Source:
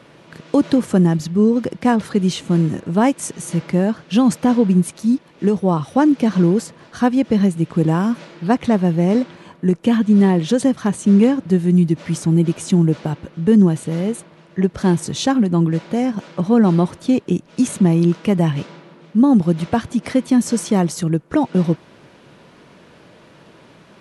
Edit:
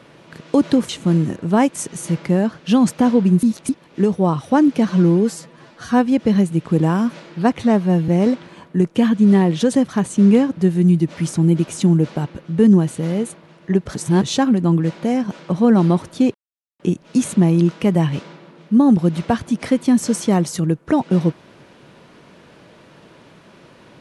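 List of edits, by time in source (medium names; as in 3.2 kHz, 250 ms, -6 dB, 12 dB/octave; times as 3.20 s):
0.89–2.33 s: delete
4.87–5.13 s: reverse
6.33–7.11 s: stretch 1.5×
8.64–8.97 s: stretch 1.5×
14.84–15.10 s: reverse
17.23 s: insert silence 0.45 s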